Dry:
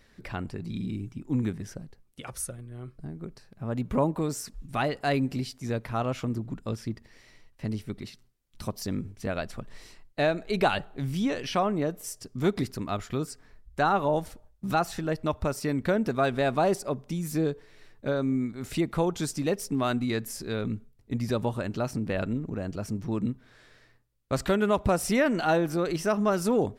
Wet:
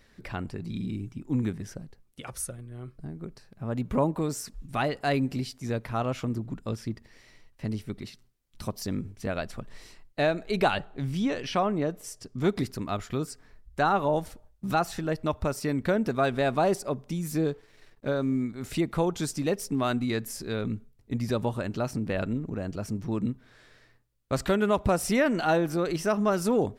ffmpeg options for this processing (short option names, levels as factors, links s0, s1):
-filter_complex "[0:a]asettb=1/sr,asplit=3[s0][s1][s2];[s0]atrim=end=10.704[s3];[s1]atrim=start=10.7:end=12.49,asetpts=PTS-STARTPTS,afade=t=in:d=0.004:c=qsin,afade=t=out:st=1.786:d=0.004:c=qsin,highshelf=f=11000:g=-11[s4];[s2]atrim=start=12.486[s5];[s3][s4]acrossfade=d=0.004:c1=hsin:c2=qsin[s6];[s6][s5]acrossfade=d=0.004:c1=qsin:c2=hsin,asettb=1/sr,asplit=3[s7][s8][s9];[s7]atrim=end=17.444[s10];[s8]atrim=start=17.44:end=18.43,asetpts=PTS-STARTPTS,afade=t=in:d=0.004:c=qsin,afade=t=out:st=0.986:d=0.004:c=qsin,aeval=exprs='sgn(val(0))*max(abs(val(0))-0.00106,0)':c=same[s11];[s9]atrim=start=18.426[s12];[s10][s11]acrossfade=d=0.004:c1=hsin:c2=qsin[s13];[s13][s12]acrossfade=d=0.004:c1=qsin:c2=hsin"